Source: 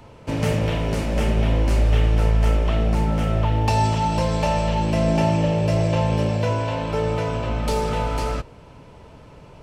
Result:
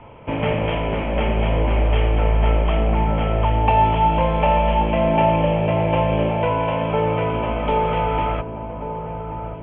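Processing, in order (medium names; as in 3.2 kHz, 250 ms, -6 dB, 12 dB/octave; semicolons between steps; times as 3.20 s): rippled Chebyshev low-pass 3.3 kHz, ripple 6 dB; on a send: feedback echo behind a low-pass 1132 ms, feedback 50%, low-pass 1.3 kHz, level -10 dB; on the sum: dynamic bell 110 Hz, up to -4 dB, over -36 dBFS, Q 0.92; trim +6.5 dB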